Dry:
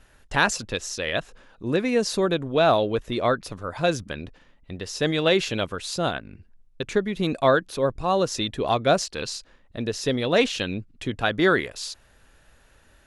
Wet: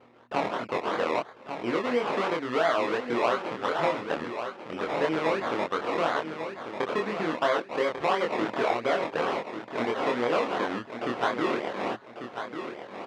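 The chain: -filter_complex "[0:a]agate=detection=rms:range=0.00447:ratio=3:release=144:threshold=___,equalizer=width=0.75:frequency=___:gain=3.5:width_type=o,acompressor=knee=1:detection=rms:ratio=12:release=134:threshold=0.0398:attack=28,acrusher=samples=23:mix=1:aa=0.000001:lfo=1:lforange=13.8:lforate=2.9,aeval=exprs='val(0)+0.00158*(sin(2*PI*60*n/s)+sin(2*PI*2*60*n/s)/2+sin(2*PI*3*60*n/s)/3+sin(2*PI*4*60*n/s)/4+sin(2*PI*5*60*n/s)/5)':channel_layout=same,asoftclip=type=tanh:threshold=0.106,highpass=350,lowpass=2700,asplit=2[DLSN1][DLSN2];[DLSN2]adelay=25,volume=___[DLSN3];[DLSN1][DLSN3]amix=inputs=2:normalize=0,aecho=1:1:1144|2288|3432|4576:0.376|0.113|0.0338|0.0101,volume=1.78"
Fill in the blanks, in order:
0.00224, 1300, 0.794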